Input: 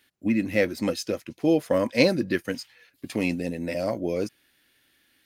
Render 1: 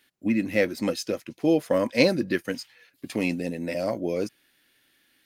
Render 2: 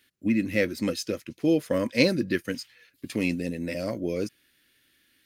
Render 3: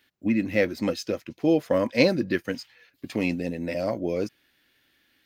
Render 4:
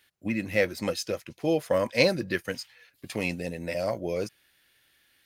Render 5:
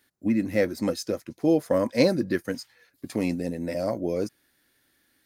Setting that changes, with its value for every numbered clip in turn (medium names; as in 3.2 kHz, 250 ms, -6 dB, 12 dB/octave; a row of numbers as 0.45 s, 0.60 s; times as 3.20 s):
peaking EQ, frequency: 70 Hz, 790 Hz, 10 kHz, 270 Hz, 2.8 kHz